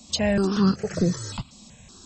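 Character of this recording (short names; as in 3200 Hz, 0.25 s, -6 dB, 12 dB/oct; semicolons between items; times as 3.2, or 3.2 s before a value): tremolo saw up 1.4 Hz, depth 35%; notches that jump at a steady rate 5.3 Hz 420–3000 Hz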